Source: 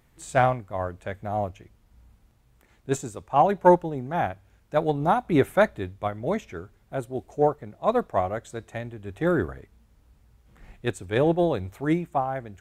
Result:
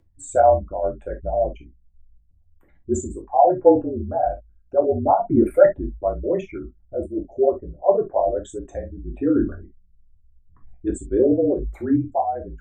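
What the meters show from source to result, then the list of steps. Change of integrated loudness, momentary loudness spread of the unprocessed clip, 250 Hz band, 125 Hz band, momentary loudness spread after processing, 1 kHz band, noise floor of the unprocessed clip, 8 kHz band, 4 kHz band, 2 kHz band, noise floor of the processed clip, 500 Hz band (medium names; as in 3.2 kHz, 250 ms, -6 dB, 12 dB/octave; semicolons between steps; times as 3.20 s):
+4.5 dB, 13 LU, +5.0 dB, -2.0 dB, 14 LU, +2.0 dB, -62 dBFS, no reading, under -10 dB, -8.5 dB, -57 dBFS, +6.0 dB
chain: resonances exaggerated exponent 3; frequency shift -44 Hz; gated-style reverb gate 90 ms falling, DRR -0.5 dB; trim +1 dB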